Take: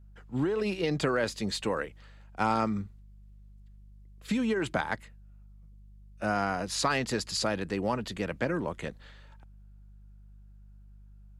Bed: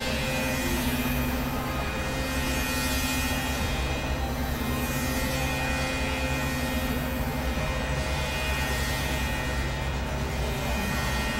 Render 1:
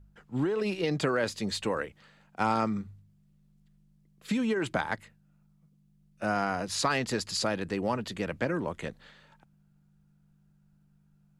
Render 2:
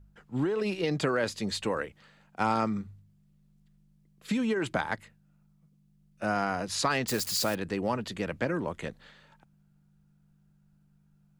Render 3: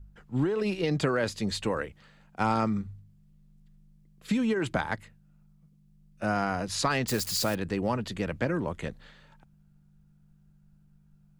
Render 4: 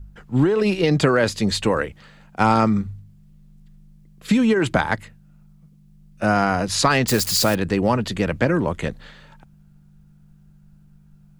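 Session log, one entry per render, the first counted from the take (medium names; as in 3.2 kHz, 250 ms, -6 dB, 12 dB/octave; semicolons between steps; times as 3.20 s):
de-hum 50 Hz, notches 2
7.08–7.55 s: zero-crossing glitches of -28.5 dBFS
bass shelf 120 Hz +9.5 dB
trim +9.5 dB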